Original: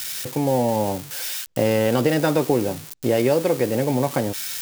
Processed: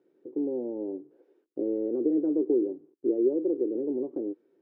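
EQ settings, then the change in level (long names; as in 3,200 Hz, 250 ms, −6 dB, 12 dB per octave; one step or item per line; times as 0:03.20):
flat-topped band-pass 350 Hz, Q 3
0.0 dB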